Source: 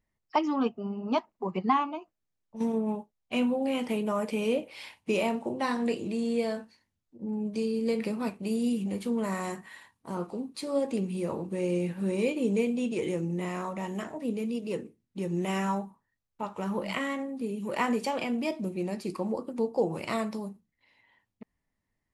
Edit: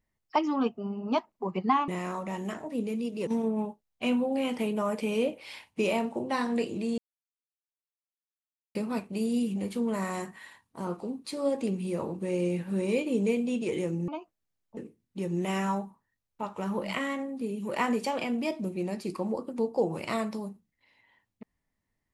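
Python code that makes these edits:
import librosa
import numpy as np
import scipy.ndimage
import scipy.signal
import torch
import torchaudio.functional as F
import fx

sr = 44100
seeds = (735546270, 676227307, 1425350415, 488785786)

y = fx.edit(x, sr, fx.swap(start_s=1.88, length_s=0.69, other_s=13.38, other_length_s=1.39),
    fx.silence(start_s=6.28, length_s=1.77), tone=tone)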